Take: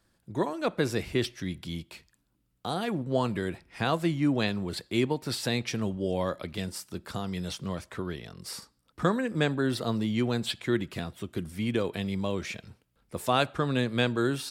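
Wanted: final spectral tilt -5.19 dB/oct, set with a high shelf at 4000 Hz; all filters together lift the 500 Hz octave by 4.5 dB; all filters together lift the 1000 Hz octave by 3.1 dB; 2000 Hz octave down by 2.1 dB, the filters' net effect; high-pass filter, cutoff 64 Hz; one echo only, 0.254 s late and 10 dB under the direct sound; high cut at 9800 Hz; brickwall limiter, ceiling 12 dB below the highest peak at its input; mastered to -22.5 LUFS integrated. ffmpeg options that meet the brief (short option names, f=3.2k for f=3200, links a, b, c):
-af "highpass=64,lowpass=9.8k,equalizer=f=500:t=o:g=5,equalizer=f=1k:t=o:g=3.5,equalizer=f=2k:t=o:g=-6,highshelf=f=4k:g=6,alimiter=limit=-20.5dB:level=0:latency=1,aecho=1:1:254:0.316,volume=9.5dB"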